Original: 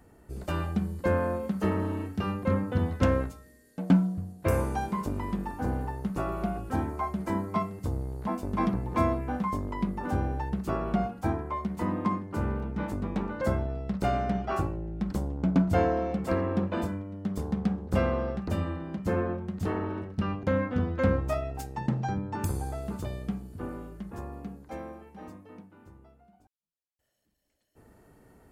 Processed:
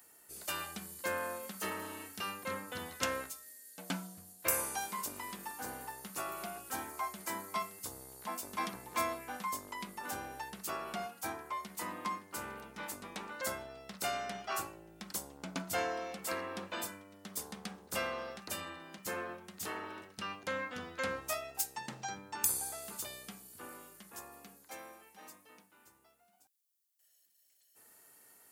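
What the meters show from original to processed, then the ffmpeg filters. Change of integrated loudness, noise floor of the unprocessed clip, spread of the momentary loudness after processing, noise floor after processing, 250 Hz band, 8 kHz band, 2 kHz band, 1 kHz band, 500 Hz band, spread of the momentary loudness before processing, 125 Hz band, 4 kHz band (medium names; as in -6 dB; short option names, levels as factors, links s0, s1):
-9.0 dB, -62 dBFS, 13 LU, -70 dBFS, -18.5 dB, no reading, -1.0 dB, -6.5 dB, -11.5 dB, 11 LU, -23.5 dB, +5.0 dB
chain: -af "aderivative,volume=3.55"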